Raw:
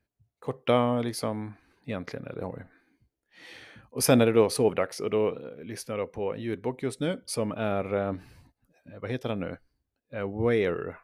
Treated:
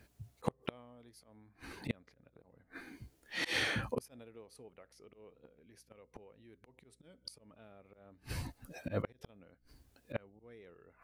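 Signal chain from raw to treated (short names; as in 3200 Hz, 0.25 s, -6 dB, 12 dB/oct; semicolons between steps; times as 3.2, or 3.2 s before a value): bell 9100 Hz +3 dB 2.3 oct; auto swell 0.13 s; compressor 2:1, threshold -39 dBFS, peak gain reduction 13 dB; flipped gate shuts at -36 dBFS, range -36 dB; hum 60 Hz, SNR 32 dB; gain +15 dB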